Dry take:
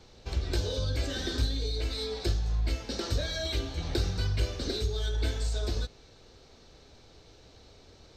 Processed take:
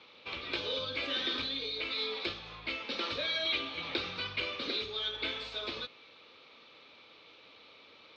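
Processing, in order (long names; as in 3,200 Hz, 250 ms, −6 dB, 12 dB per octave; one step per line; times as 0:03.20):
loudspeaker in its box 370–3,800 Hz, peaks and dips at 390 Hz −8 dB, 720 Hz −9 dB, 1,200 Hz +7 dB, 1,600 Hz −5 dB, 2,400 Hz +10 dB, 3,400 Hz +6 dB
level +2 dB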